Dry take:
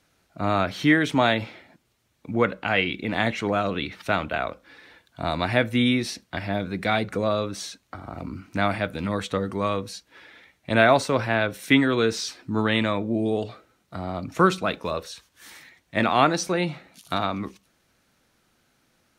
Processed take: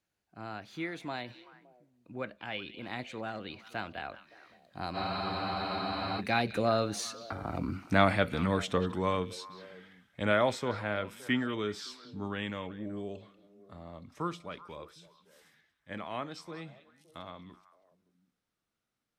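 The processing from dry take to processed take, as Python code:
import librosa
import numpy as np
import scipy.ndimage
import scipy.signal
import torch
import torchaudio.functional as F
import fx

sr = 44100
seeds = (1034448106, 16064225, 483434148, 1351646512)

y = fx.doppler_pass(x, sr, speed_mps=29, closest_m=26.0, pass_at_s=7.71)
y = fx.echo_stepped(y, sr, ms=189, hz=3400.0, octaves=-1.4, feedback_pct=70, wet_db=-11.5)
y = fx.spec_freeze(y, sr, seeds[0], at_s=4.98, hold_s=1.21)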